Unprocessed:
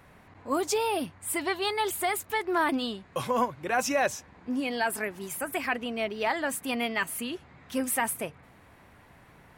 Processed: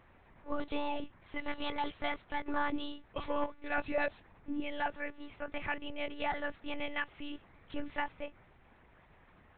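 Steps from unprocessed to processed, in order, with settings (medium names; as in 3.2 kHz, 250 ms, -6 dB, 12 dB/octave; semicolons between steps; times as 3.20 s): monotone LPC vocoder at 8 kHz 290 Hz; trim -6.5 dB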